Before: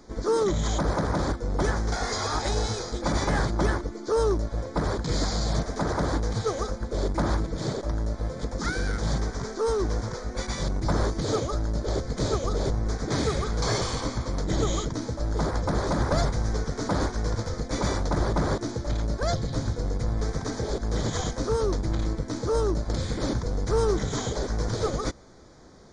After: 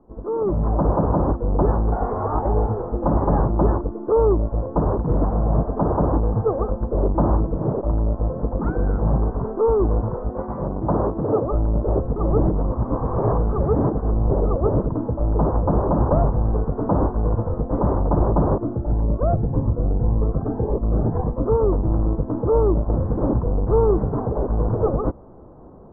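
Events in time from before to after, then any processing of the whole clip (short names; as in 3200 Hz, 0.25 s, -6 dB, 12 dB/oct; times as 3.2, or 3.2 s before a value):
10.29–11.47 HPF 150 Hz 6 dB/oct
12.16–14.84 reverse
18.62–21.46 cascading phaser rising 1.8 Hz
whole clip: steep low-pass 1100 Hz 36 dB/oct; AGC gain up to 11.5 dB; gain -3.5 dB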